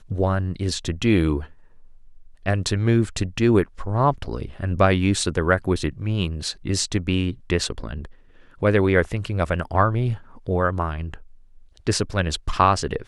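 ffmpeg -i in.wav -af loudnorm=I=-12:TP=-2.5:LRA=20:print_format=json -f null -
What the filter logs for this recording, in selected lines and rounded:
"input_i" : "-22.8",
"input_tp" : "-2.6",
"input_lra" : "2.5",
"input_thresh" : "-33.5",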